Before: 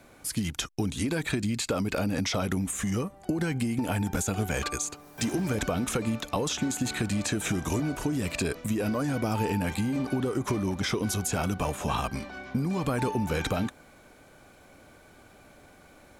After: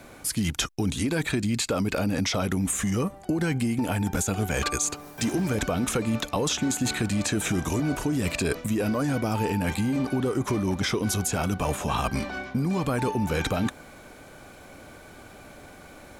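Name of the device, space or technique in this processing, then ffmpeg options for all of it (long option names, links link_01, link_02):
compression on the reversed sound: -af "areverse,acompressor=threshold=-30dB:ratio=6,areverse,volume=7.5dB"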